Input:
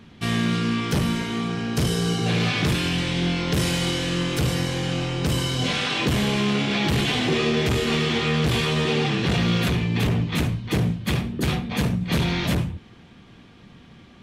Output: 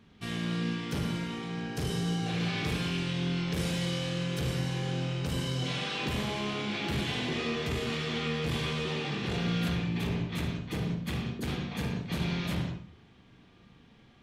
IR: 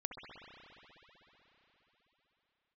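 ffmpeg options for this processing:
-filter_complex "[1:a]atrim=start_sample=2205,afade=t=out:st=0.36:d=0.01,atrim=end_sample=16317,asetrate=70560,aresample=44100[a];[0:a][a]afir=irnorm=-1:irlink=0,volume=-4dB"

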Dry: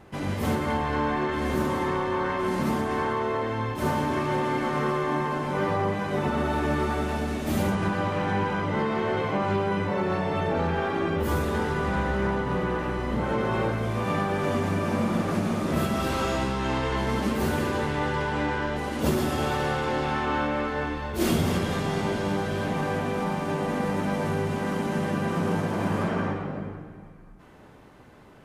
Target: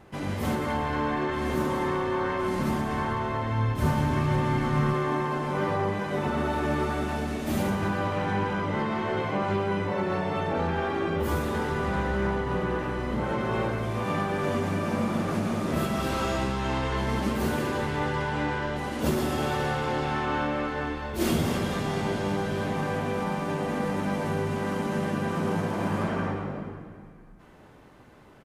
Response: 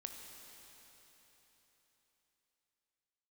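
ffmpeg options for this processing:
-filter_complex "[0:a]bandreject=f=89.19:t=h:w=4,bandreject=f=178.38:t=h:w=4,bandreject=f=267.57:t=h:w=4,bandreject=f=356.76:t=h:w=4,bandreject=f=445.95:t=h:w=4,asettb=1/sr,asplit=3[a][b][c];[a]atrim=end=2.244[d];[b]atrim=start=2.24:end=4.94,asetpts=PTS-STARTPTS,afade=t=in:d=0.004:c=qsin,afade=t=out:st=2.696:d=0.004:c=qsin,asubboost=boost=7:cutoff=170[e];[c]atrim=start=4.936[f];[d][e]acrossfade=d=0.004:c1=hsin:c2=qsin[g];[g][f]acrossfade=d=0.004:c1=qsin:c2=hsin,aecho=1:1:183|366|549|732:0.178|0.0818|0.0376|0.0173,volume=-1.5dB"

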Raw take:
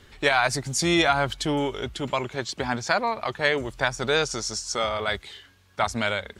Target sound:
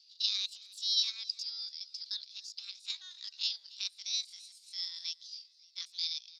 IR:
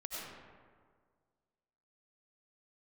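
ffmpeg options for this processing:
-filter_complex "[0:a]asuperpass=centerf=2800:order=4:qfactor=3.9,asplit=5[a][b][c][d][e];[b]adelay=281,afreqshift=35,volume=-20.5dB[f];[c]adelay=562,afreqshift=70,volume=-26dB[g];[d]adelay=843,afreqshift=105,volume=-31.5dB[h];[e]adelay=1124,afreqshift=140,volume=-37dB[i];[a][f][g][h][i]amix=inputs=5:normalize=0,asetrate=70004,aresample=44100,atempo=0.629961,volume=2.5dB"

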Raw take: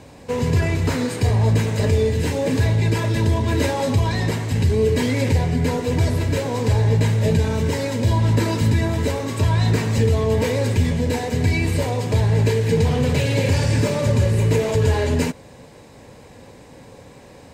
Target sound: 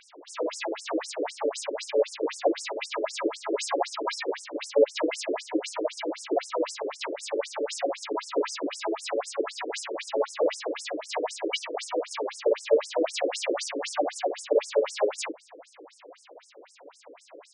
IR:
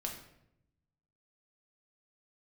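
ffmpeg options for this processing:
-filter_complex "[0:a]aresample=22050,aresample=44100,asplit=3[a][b][c];[b]asetrate=55563,aresample=44100,atempo=0.793701,volume=-3dB[d];[c]asetrate=58866,aresample=44100,atempo=0.749154,volume=-6dB[e];[a][d][e]amix=inputs=3:normalize=0,afftfilt=real='re*between(b*sr/1024,380*pow(7400/380,0.5+0.5*sin(2*PI*3.9*pts/sr))/1.41,380*pow(7400/380,0.5+0.5*sin(2*PI*3.9*pts/sr))*1.41)':imag='im*between(b*sr/1024,380*pow(7400/380,0.5+0.5*sin(2*PI*3.9*pts/sr))/1.41,380*pow(7400/380,0.5+0.5*sin(2*PI*3.9*pts/sr))*1.41)':win_size=1024:overlap=0.75"

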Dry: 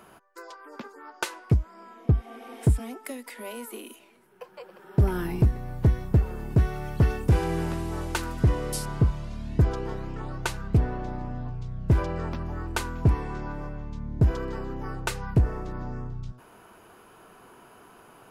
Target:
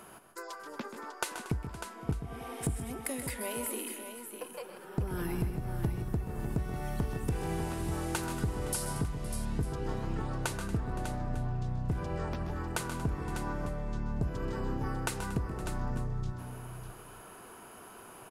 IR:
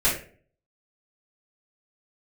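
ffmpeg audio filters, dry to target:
-filter_complex "[0:a]equalizer=f=10k:w=0.98:g=8,acompressor=threshold=-30dB:ratio=10,asplit=2[a][b];[b]aecho=0:1:131|153|233|516|598|899:0.299|0.211|0.158|0.119|0.355|0.106[c];[a][c]amix=inputs=2:normalize=0"

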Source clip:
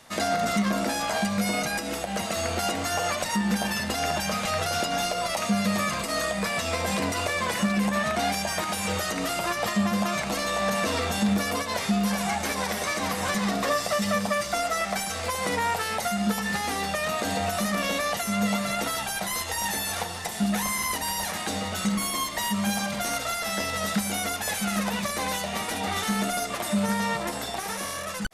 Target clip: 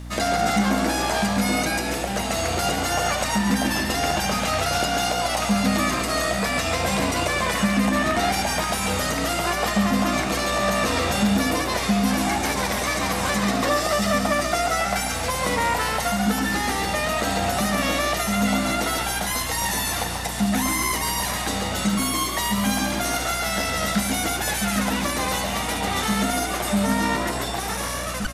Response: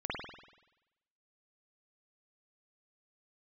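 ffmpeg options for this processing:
-filter_complex "[0:a]asplit=7[a][b][c][d][e][f][g];[b]adelay=138,afreqshift=58,volume=-6.5dB[h];[c]adelay=276,afreqshift=116,volume=-12.9dB[i];[d]adelay=414,afreqshift=174,volume=-19.3dB[j];[e]adelay=552,afreqshift=232,volume=-25.6dB[k];[f]adelay=690,afreqshift=290,volume=-32dB[l];[g]adelay=828,afreqshift=348,volume=-38.4dB[m];[a][h][i][j][k][l][m]amix=inputs=7:normalize=0,acrusher=bits=10:mix=0:aa=0.000001,aeval=exprs='val(0)+0.0141*(sin(2*PI*60*n/s)+sin(2*PI*2*60*n/s)/2+sin(2*PI*3*60*n/s)/3+sin(2*PI*4*60*n/s)/4+sin(2*PI*5*60*n/s)/5)':c=same,volume=3dB"

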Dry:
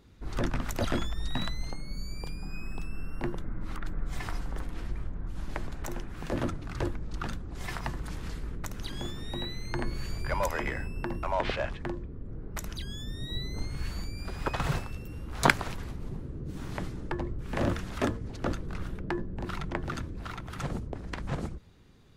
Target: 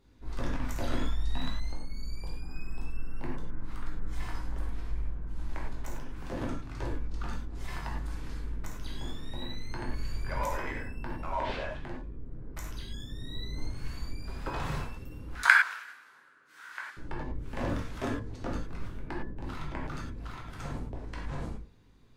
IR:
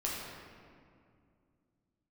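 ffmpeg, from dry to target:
-filter_complex "[0:a]asettb=1/sr,asplit=3[a][b][c];[a]atrim=end=15.354[d];[b]atrim=start=15.35:end=16.97,asetpts=PTS-STARTPTS,afade=t=in:d=0.004:c=qsin,afade=t=out:st=1.616:d=0.004:c=qsin,highpass=f=1.5k:t=q:w=5.1[e];[c]atrim=start=16.966[f];[d][e]acrossfade=d=0.004:c1=hsin:c2=qsin[g];[g][f]acrossfade=d=0.004:c1=qsin:c2=hsin[h];[1:a]atrim=start_sample=2205,atrim=end_sample=4410,asetrate=37044,aresample=44100[i];[h][i]afir=irnorm=-1:irlink=0,volume=-7.5dB"

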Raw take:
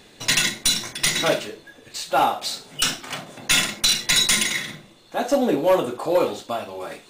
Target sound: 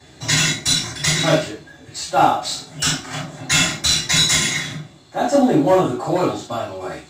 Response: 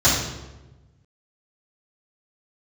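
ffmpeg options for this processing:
-filter_complex "[1:a]atrim=start_sample=2205,atrim=end_sample=3528,asetrate=48510,aresample=44100[a];[0:a][a]afir=irnorm=-1:irlink=0,volume=-15.5dB"

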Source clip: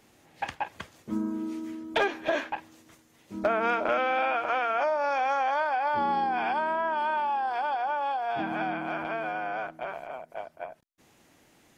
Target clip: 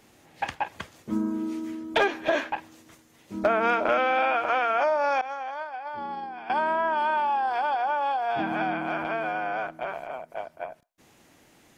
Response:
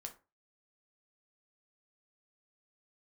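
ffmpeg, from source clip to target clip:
-filter_complex "[0:a]asettb=1/sr,asplit=3[a][b][c];[a]atrim=end=5.214[d];[b]atrim=start=5.21:end=6.5,asetpts=PTS-STARTPTS,afade=t=in:d=0.004:c=qsin,afade=t=out:st=1.286:d=0.004:c=qsin,agate=range=-33dB:threshold=-18dB:ratio=3:detection=peak[e];[c]atrim=start=6.496[f];[d][e]acrossfade=d=0.004:c1=hsin:c2=qsin[g];[g][f]acrossfade=d=0.004:c1=qsin:c2=hsin,asplit=2[h][i];[i]aderivative[j];[1:a]atrim=start_sample=2205,lowpass=1.8k,adelay=116[k];[j][k]afir=irnorm=-1:irlink=0,volume=-11.5dB[l];[h][l]amix=inputs=2:normalize=0,volume=3dB"

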